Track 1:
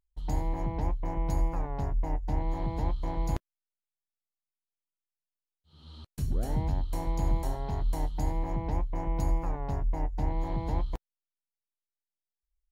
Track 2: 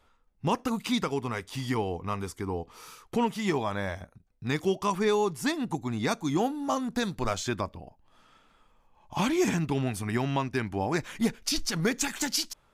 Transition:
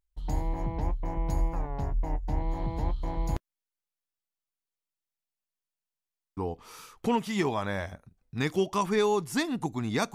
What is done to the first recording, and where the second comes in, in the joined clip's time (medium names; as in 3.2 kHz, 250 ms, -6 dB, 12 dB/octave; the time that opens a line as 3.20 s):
track 1
5.17 s: stutter in place 0.15 s, 8 plays
6.37 s: go over to track 2 from 2.46 s